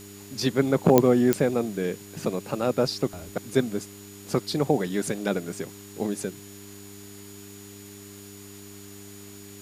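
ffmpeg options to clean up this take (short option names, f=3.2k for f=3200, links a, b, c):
-af "adeclick=t=4,bandreject=f=100.5:t=h:w=4,bandreject=f=201:t=h:w=4,bandreject=f=301.5:t=h:w=4,bandreject=f=402:t=h:w=4,bandreject=f=6.9k:w=30,afwtdn=0.004"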